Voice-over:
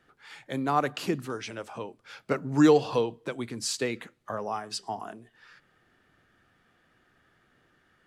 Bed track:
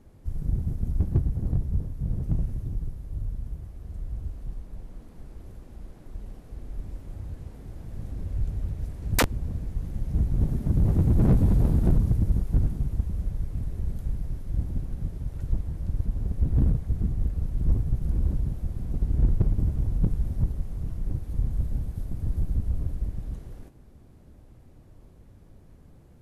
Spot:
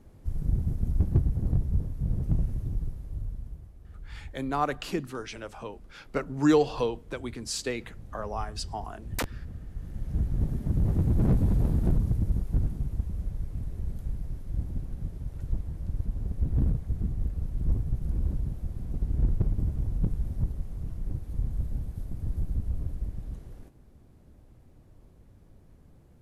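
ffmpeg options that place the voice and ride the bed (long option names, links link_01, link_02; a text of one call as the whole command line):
ffmpeg -i stem1.wav -i stem2.wav -filter_complex "[0:a]adelay=3850,volume=-2dB[link_01];[1:a]volume=5.5dB,afade=type=out:start_time=2.81:duration=0.94:silence=0.354813,afade=type=in:start_time=9.67:duration=0.44:silence=0.530884[link_02];[link_01][link_02]amix=inputs=2:normalize=0" out.wav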